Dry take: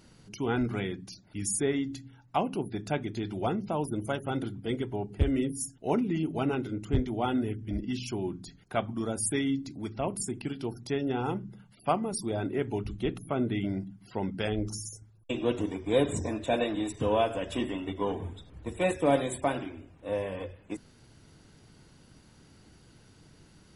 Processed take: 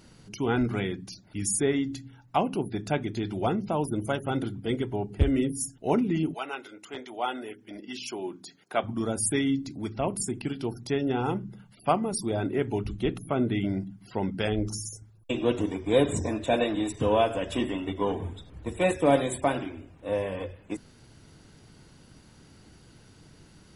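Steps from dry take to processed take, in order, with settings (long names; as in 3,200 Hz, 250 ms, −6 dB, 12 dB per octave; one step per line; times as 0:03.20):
0:06.33–0:08.83: high-pass filter 920 Hz → 300 Hz 12 dB per octave
level +3 dB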